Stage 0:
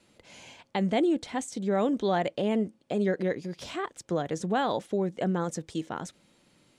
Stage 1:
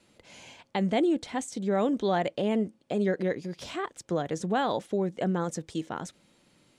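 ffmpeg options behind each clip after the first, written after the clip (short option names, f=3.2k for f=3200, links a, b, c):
-af anull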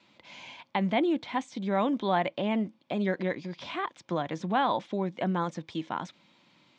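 -filter_complex "[0:a]highpass=130,equalizer=f=440:t=q:w=4:g=-9,equalizer=f=990:t=q:w=4:g=8,equalizer=f=2.3k:t=q:w=4:g=6,equalizer=f=3.5k:t=q:w=4:g=6,lowpass=f=5.7k:w=0.5412,lowpass=f=5.7k:w=1.3066,acrossover=split=3100[a][b];[b]acompressor=threshold=-48dB:ratio=4:attack=1:release=60[c];[a][c]amix=inputs=2:normalize=0"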